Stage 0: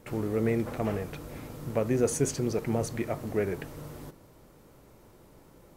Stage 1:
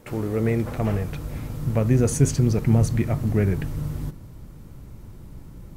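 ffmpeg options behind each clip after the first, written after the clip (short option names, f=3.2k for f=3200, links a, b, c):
-af "asubboost=boost=7:cutoff=190,volume=4dB"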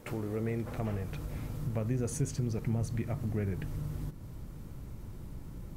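-af "acompressor=threshold=-36dB:ratio=2,volume=-2dB"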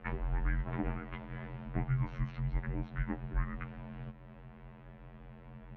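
-af "afftfilt=real='hypot(re,im)*cos(PI*b)':imag='0':win_size=2048:overlap=0.75,highpass=f=260:t=q:w=0.5412,highpass=f=260:t=q:w=1.307,lowpass=f=3.1k:t=q:w=0.5176,lowpass=f=3.1k:t=q:w=0.7071,lowpass=f=3.1k:t=q:w=1.932,afreqshift=-390,volume=9dB"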